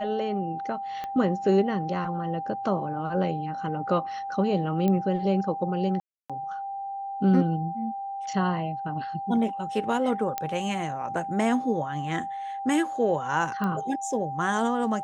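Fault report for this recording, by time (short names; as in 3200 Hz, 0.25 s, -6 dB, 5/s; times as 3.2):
tone 790 Hz -31 dBFS
1.04 pop -21 dBFS
4.88 pop -15 dBFS
6–6.3 gap 0.296 s
10.38 pop -13 dBFS
13.64 pop -18 dBFS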